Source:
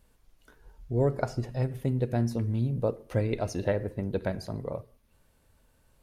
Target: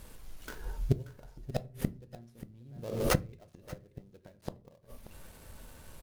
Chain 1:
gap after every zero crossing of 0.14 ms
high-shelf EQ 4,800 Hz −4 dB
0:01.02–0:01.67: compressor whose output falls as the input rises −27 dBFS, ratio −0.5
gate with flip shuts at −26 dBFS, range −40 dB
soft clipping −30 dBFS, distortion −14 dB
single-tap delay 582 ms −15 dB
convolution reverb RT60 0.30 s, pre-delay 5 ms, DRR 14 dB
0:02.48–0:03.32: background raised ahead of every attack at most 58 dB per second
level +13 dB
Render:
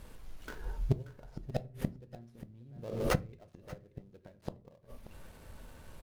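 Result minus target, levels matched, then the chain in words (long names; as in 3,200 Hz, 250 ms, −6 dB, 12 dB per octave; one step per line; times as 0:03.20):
soft clipping: distortion +13 dB; 8,000 Hz band −5.0 dB
gap after every zero crossing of 0.14 ms
high-shelf EQ 4,800 Hz +4.5 dB
0:01.02–0:01.67: compressor whose output falls as the input rises −27 dBFS, ratio −0.5
gate with flip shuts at −26 dBFS, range −40 dB
soft clipping −22 dBFS, distortion −27 dB
single-tap delay 582 ms −15 dB
convolution reverb RT60 0.30 s, pre-delay 5 ms, DRR 14 dB
0:02.48–0:03.32: background raised ahead of every attack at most 58 dB per second
level +13 dB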